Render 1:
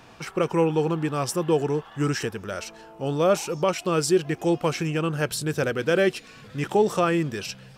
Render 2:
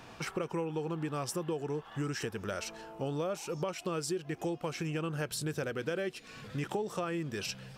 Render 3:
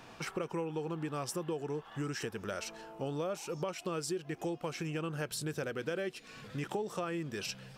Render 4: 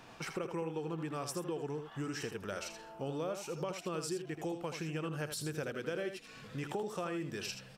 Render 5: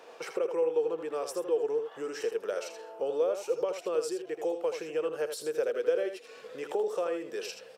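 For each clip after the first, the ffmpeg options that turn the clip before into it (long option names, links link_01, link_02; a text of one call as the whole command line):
ffmpeg -i in.wav -af "acompressor=threshold=-31dB:ratio=6,volume=-1.5dB" out.wav
ffmpeg -i in.wav -af "equalizer=frequency=71:width_type=o:width=1.4:gain=-4.5,volume=-1.5dB" out.wav
ffmpeg -i in.wav -af "aecho=1:1:80:0.376,volume=-2dB" out.wav
ffmpeg -i in.wav -af "highpass=frequency=470:width_type=q:width=4.9" out.wav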